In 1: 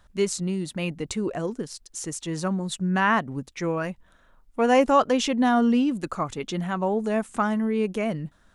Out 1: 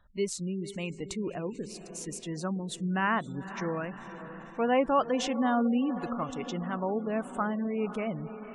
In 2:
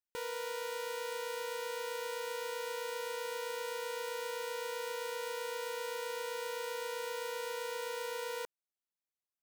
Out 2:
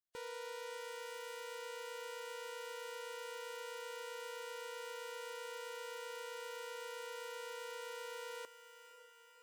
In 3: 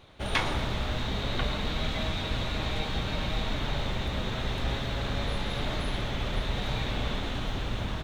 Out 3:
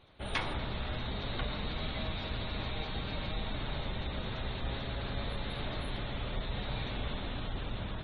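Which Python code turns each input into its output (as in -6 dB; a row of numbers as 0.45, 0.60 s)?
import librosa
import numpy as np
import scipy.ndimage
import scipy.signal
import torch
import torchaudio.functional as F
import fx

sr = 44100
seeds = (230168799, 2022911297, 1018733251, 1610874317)

y = fx.echo_diffused(x, sr, ms=519, feedback_pct=62, wet_db=-12.5)
y = fx.spec_gate(y, sr, threshold_db=-30, keep='strong')
y = y * librosa.db_to_amplitude(-6.5)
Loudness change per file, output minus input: -6.5, -7.0, -6.5 LU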